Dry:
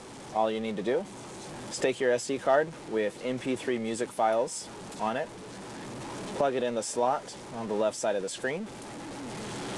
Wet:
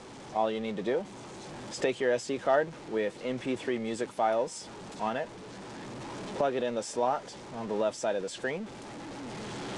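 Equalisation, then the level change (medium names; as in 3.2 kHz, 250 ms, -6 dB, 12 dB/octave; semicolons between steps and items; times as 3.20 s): low-pass 7 kHz 12 dB/octave; -1.5 dB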